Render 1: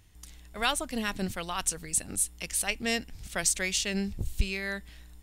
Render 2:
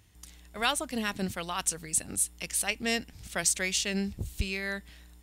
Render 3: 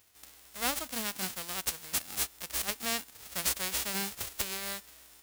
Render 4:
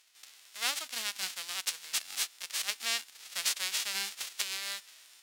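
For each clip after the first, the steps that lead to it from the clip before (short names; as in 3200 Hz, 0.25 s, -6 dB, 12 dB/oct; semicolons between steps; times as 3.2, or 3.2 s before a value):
HPF 57 Hz
spectral whitening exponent 0.1; gain -3.5 dB
band-pass 3700 Hz, Q 0.7; gain +4 dB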